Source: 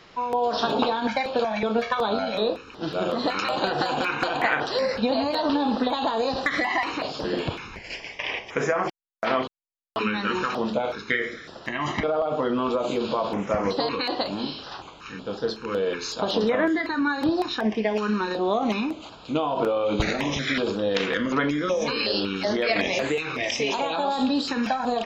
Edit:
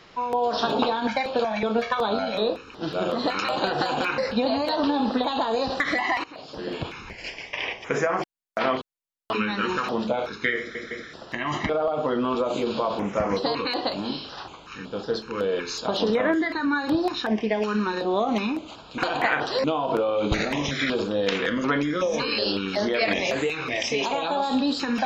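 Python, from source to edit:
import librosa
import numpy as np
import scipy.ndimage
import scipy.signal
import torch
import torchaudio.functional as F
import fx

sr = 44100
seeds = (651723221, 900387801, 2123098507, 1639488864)

y = fx.edit(x, sr, fx.move(start_s=4.18, length_s=0.66, to_s=19.32),
    fx.fade_in_from(start_s=6.9, length_s=0.84, floor_db=-18.5),
    fx.stutter(start_s=11.25, slice_s=0.16, count=3), tone=tone)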